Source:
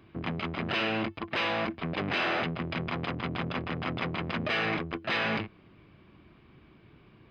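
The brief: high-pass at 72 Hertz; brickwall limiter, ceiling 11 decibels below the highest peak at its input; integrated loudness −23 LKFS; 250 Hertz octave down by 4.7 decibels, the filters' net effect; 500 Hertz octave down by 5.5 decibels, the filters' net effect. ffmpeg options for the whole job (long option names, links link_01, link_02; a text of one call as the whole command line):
ffmpeg -i in.wav -af "highpass=72,equalizer=frequency=250:width_type=o:gain=-5,equalizer=frequency=500:width_type=o:gain=-6,volume=16.5dB,alimiter=limit=-14dB:level=0:latency=1" out.wav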